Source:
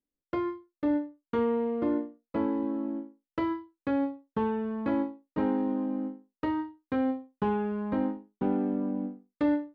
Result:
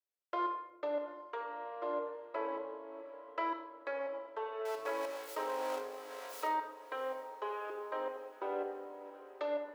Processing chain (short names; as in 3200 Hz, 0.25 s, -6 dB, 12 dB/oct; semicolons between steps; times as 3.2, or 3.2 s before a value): 4.65–6.47 zero-crossing step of -36 dBFS; elliptic high-pass 440 Hz, stop band 50 dB; level quantiser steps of 13 dB; diffused feedback echo 0.707 s, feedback 61%, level -16 dB; shoebox room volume 3500 m³, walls furnished, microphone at 2.9 m; gain +2 dB